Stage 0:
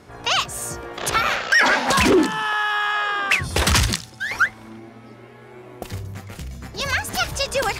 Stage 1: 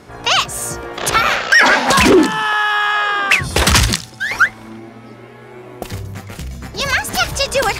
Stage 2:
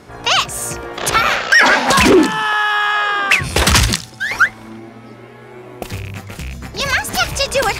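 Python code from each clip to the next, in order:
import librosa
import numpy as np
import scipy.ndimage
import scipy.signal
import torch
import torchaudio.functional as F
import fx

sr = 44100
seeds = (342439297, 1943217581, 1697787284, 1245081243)

y1 = fx.peak_eq(x, sr, hz=87.0, db=-5.5, octaves=0.26)
y1 = y1 * librosa.db_to_amplitude(6.0)
y2 = fx.rattle_buzz(y1, sr, strikes_db=-26.0, level_db=-20.0)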